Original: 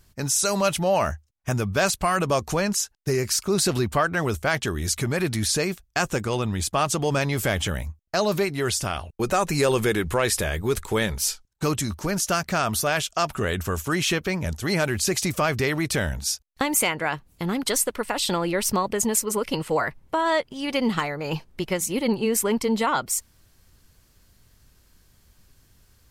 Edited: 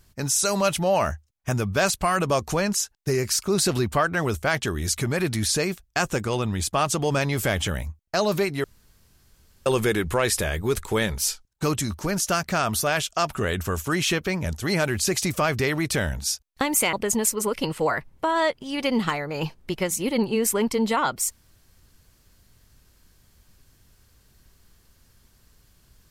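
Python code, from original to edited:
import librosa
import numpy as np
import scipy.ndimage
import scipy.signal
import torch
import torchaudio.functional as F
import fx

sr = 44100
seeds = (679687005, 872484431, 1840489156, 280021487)

y = fx.edit(x, sr, fx.room_tone_fill(start_s=8.64, length_s=1.02),
    fx.cut(start_s=16.93, length_s=1.9), tone=tone)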